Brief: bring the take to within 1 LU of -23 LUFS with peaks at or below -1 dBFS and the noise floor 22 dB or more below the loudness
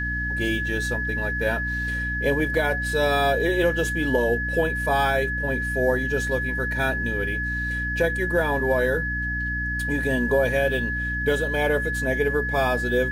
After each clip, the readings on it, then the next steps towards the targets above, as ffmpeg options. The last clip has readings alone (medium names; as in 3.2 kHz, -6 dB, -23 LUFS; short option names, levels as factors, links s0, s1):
hum 60 Hz; highest harmonic 300 Hz; hum level -28 dBFS; steady tone 1.7 kHz; tone level -26 dBFS; loudness -23.5 LUFS; peak level -9.5 dBFS; loudness target -23.0 LUFS
-> -af "bandreject=f=60:t=h:w=4,bandreject=f=120:t=h:w=4,bandreject=f=180:t=h:w=4,bandreject=f=240:t=h:w=4,bandreject=f=300:t=h:w=4"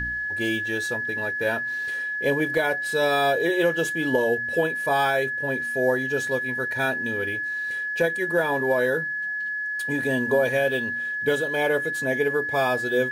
hum not found; steady tone 1.7 kHz; tone level -26 dBFS
-> -af "bandreject=f=1700:w=30"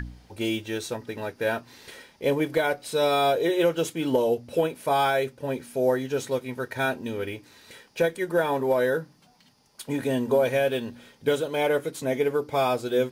steady tone not found; loudness -26.0 LUFS; peak level -11.5 dBFS; loudness target -23.0 LUFS
-> -af "volume=1.41"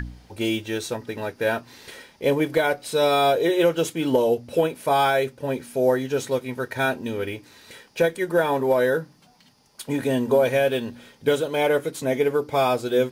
loudness -23.0 LUFS; peak level -8.5 dBFS; noise floor -56 dBFS